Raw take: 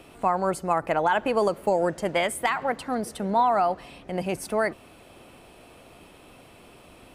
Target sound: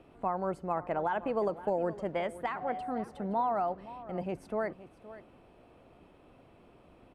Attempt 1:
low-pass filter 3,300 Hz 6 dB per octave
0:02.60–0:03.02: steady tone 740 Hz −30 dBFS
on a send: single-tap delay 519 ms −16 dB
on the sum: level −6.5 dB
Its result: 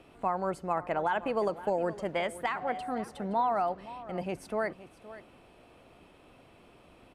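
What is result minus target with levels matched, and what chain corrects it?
4,000 Hz band +6.0 dB
low-pass filter 1,000 Hz 6 dB per octave
0:02.60–0:03.02: steady tone 740 Hz −30 dBFS
on a send: single-tap delay 519 ms −16 dB
on the sum: level −6.5 dB

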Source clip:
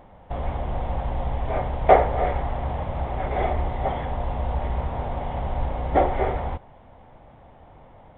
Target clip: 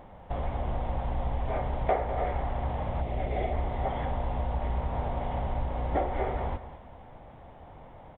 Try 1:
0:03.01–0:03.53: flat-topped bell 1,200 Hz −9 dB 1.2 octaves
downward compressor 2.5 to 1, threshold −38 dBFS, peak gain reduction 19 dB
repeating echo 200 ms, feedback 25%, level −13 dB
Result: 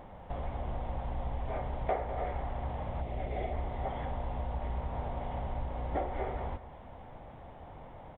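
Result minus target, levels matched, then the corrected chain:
downward compressor: peak gain reduction +5.5 dB
0:03.01–0:03.53: flat-topped bell 1,200 Hz −9 dB 1.2 octaves
downward compressor 2.5 to 1, threshold −29 dBFS, peak gain reduction 13.5 dB
repeating echo 200 ms, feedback 25%, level −13 dB

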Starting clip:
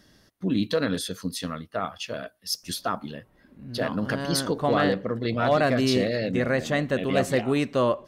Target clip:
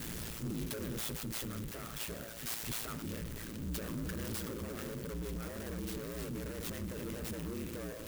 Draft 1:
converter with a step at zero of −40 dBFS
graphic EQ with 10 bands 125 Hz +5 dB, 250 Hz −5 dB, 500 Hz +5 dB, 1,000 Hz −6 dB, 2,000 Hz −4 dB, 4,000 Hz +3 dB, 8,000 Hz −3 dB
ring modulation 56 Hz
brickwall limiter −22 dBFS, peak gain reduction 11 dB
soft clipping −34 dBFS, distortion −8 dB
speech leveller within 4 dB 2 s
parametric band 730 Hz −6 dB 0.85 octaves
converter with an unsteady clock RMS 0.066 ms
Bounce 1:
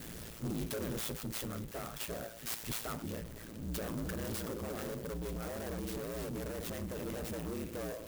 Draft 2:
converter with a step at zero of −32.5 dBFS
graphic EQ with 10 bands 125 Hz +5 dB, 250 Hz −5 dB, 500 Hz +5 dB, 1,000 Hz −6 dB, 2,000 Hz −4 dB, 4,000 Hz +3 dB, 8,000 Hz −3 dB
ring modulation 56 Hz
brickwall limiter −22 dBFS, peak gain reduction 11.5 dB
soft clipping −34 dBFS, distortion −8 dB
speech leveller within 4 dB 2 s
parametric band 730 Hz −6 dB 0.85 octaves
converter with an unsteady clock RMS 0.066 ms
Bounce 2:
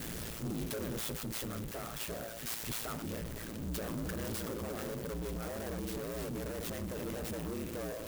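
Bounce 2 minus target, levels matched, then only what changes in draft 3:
1,000 Hz band +2.5 dB
change: parametric band 730 Hz −16 dB 0.85 octaves

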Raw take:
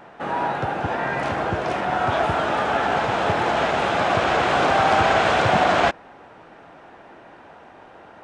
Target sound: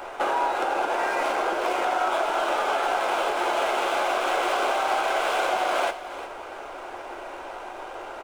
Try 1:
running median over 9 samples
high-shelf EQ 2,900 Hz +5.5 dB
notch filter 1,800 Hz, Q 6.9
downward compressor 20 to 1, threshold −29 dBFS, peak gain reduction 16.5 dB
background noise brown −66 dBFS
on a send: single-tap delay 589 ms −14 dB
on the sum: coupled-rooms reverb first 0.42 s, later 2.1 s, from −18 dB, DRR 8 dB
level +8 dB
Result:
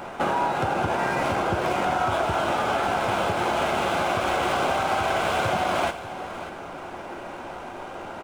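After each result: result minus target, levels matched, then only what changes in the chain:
echo 233 ms late; 250 Hz band +6.0 dB
change: single-tap delay 356 ms −14 dB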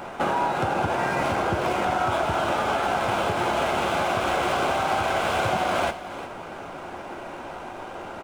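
250 Hz band +5.5 dB
add after downward compressor: high-pass filter 350 Hz 24 dB per octave

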